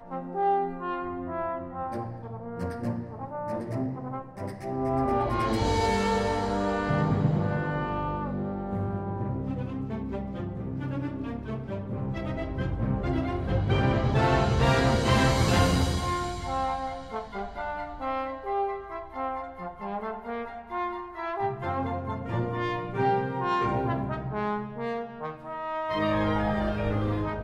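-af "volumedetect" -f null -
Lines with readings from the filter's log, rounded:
mean_volume: -28.4 dB
max_volume: -9.7 dB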